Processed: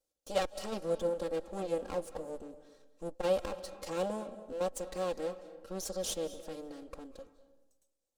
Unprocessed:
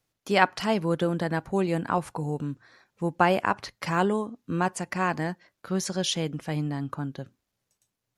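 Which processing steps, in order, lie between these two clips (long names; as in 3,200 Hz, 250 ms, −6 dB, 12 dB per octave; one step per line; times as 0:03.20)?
lower of the sound and its delayed copy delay 3.7 ms
octave-band graphic EQ 125/250/500/1,000/2,000/8,000 Hz −5/−6/+10/−5/−10/+5 dB
on a send at −14 dB: convolution reverb RT60 1.0 s, pre-delay 166 ms
on the sum: saturating transformer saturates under 170 Hz
level −7.5 dB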